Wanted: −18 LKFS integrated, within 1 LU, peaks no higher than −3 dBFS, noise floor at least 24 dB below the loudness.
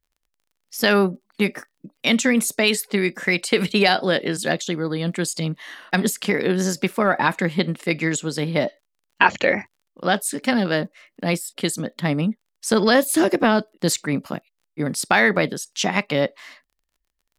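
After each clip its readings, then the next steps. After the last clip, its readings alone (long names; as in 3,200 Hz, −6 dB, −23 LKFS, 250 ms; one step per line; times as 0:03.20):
crackle rate 27 per second; integrated loudness −21.5 LKFS; sample peak −3.0 dBFS; target loudness −18.0 LKFS
→ click removal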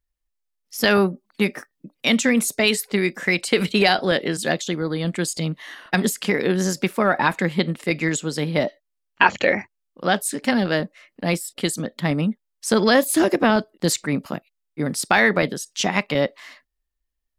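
crackle rate 0.23 per second; integrated loudness −21.5 LKFS; sample peak −3.0 dBFS; target loudness −18.0 LKFS
→ level +3.5 dB
brickwall limiter −3 dBFS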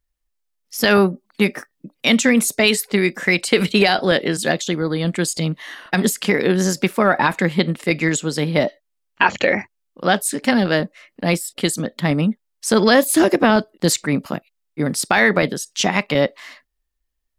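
integrated loudness −18.5 LKFS; sample peak −3.0 dBFS; background noise floor −74 dBFS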